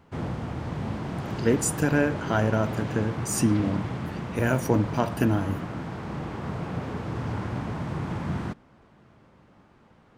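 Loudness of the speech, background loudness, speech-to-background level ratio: −26.0 LKFS, −33.0 LKFS, 7.0 dB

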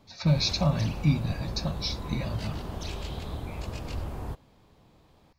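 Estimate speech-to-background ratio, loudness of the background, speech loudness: 9.0 dB, −37.5 LKFS, −28.5 LKFS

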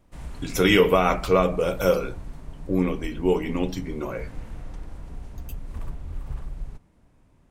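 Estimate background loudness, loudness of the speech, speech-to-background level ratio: −40.0 LKFS, −23.0 LKFS, 17.0 dB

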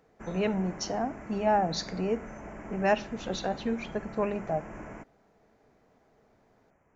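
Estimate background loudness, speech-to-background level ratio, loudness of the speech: −44.0 LKFS, 13.0 dB, −31.0 LKFS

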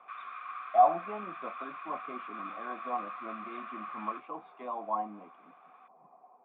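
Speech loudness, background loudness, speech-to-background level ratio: −33.5 LKFS, −42.5 LKFS, 9.0 dB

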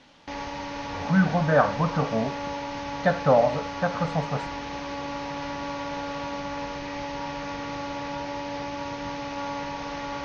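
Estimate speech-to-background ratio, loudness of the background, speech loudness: 8.5 dB, −33.0 LKFS, −24.5 LKFS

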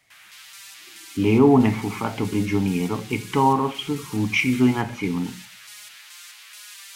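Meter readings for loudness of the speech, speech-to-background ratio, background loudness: −21.5 LKFS, 19.0 dB, −40.5 LKFS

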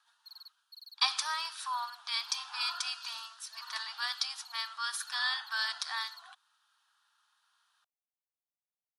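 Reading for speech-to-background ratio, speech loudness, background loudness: 18.0 dB, −34.0 LKFS, −52.0 LKFS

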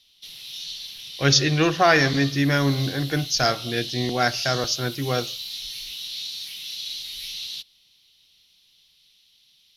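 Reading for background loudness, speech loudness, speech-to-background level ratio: −32.0 LKFS, −22.0 LKFS, 10.0 dB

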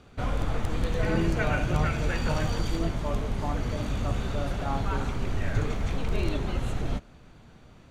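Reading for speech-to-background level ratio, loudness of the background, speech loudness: −4.0 dB, −31.0 LKFS, −35.0 LKFS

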